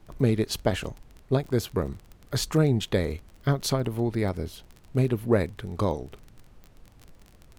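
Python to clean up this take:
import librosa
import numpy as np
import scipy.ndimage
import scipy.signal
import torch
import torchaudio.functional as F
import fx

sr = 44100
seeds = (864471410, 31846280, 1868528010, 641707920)

y = fx.fix_declick_ar(x, sr, threshold=6.5)
y = fx.noise_reduce(y, sr, print_start_s=6.88, print_end_s=7.38, reduce_db=17.0)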